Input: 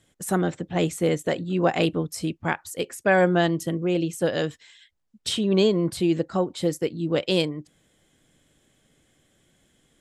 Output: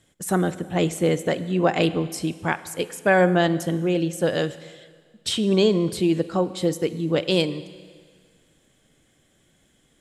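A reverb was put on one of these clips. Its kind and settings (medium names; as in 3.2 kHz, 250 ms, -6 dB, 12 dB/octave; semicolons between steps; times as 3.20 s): Schroeder reverb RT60 1.8 s, combs from 33 ms, DRR 14.5 dB; trim +1.5 dB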